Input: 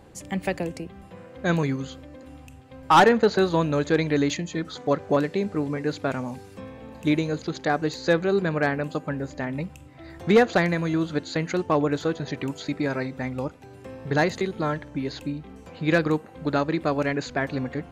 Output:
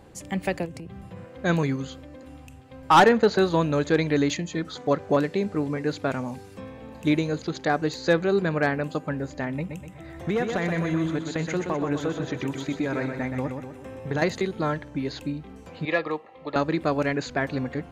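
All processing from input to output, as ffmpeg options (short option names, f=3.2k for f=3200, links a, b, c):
-filter_complex "[0:a]asettb=1/sr,asplit=3[a][b][c];[a]atrim=end=0.654[d];[b]atrim=start=0.65:end=1.25,asetpts=PTS-STARTPTS,afade=t=in:d=0.004:c=qsin,afade=t=out:st=0.596:d=0.004:c=qsin,equalizer=f=120:w=1.3:g=10,acompressor=threshold=-34dB:ratio=6:attack=3.2:release=140:knee=1:detection=peak,volume=30.5dB,asoftclip=hard,volume=-30.5dB[e];[c]atrim=start=1.246[f];[d][e]acrossfade=d=0.004:c1=hsin:c2=qsin[g];[g][f]acrossfade=d=0.004:c1=qsin:c2=hsin,asettb=1/sr,asplit=3[h][i][j];[h]atrim=end=9.574[k];[i]atrim=start=9.57:end=14.22,asetpts=PTS-STARTPTS,afade=t=in:d=0.004:c=qsin,afade=t=out:st=4.646:d=0.004:c=qsin,equalizer=f=4.5k:w=5.3:g=-11,acompressor=threshold=-22dB:ratio=6:attack=3.2:release=140:knee=1:detection=peak,aecho=1:1:124|248|372|496|620|744:0.501|0.236|0.111|0.052|0.0245|0.0115,atrim=end_sample=205065[l];[j]atrim=start=14.216[m];[k][l]acrossfade=d=0.004:c1=hsin:c2=qsin[n];[n][m]acrossfade=d=0.004:c1=qsin:c2=hsin,asettb=1/sr,asplit=3[o][p][q];[o]atrim=end=15.854[r];[p]atrim=start=15.85:end=16.56,asetpts=PTS-STARTPTS,afade=t=in:d=0.004:c=qsin,afade=t=out:st=0.706:d=0.004:c=qsin,asuperstop=centerf=1500:order=20:qfactor=6.2,acrossover=split=430 4200:gain=0.158 1 0.0794[s][t][u];[s][t][u]amix=inputs=3:normalize=0[v];[q]atrim=start=16.556[w];[r][v]acrossfade=d=0.004:c1=hsin:c2=qsin[x];[x][w]acrossfade=d=0.004:c1=qsin:c2=hsin"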